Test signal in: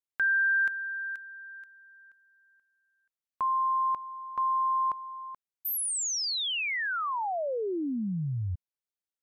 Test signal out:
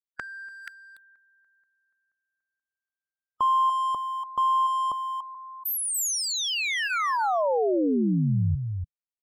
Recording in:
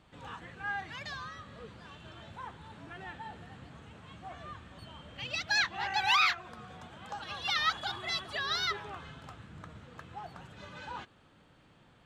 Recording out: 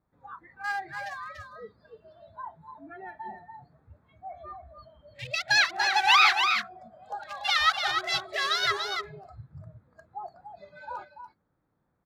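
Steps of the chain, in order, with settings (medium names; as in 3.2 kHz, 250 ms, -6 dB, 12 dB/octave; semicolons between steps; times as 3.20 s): local Wiener filter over 15 samples; delay 289 ms -6 dB; spectral noise reduction 21 dB; trim +7 dB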